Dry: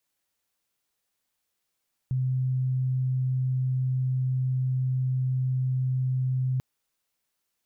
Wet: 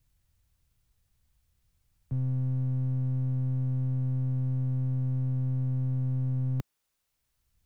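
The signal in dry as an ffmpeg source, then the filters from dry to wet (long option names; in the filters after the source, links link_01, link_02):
-f lavfi -i "sine=frequency=129:duration=4.49:sample_rate=44100,volume=-4.94dB"
-filter_complex "[0:a]acrossover=split=100|210[link_01][link_02][link_03];[link_01]acompressor=mode=upward:threshold=-44dB:ratio=2.5[link_04];[link_02]aeval=exprs='clip(val(0),-1,0.00596)':channel_layout=same[link_05];[link_04][link_05][link_03]amix=inputs=3:normalize=0"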